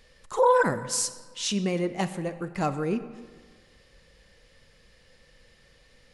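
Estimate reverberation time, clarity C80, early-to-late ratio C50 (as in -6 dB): 1.5 s, 14.0 dB, 12.5 dB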